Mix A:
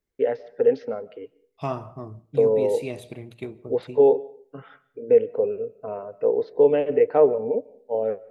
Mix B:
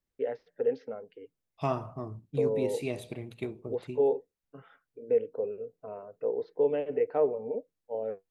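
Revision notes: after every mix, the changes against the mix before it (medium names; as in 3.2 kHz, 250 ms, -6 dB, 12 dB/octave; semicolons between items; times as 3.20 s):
first voice -7.0 dB; reverb: off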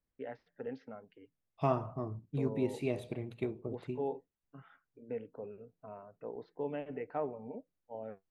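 first voice: add peaking EQ 470 Hz -15 dB 0.73 oct; master: add treble shelf 3.2 kHz -10.5 dB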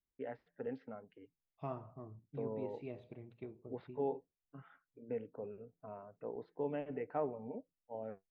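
second voice -11.5 dB; master: add distance through air 220 m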